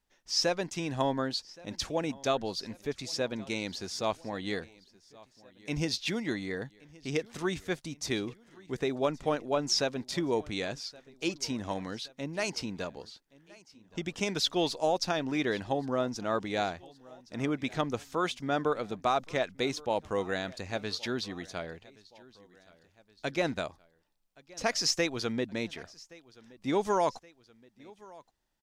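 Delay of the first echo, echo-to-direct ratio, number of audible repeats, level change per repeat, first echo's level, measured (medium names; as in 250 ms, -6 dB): 1122 ms, -21.5 dB, 2, -4.5 dB, -23.0 dB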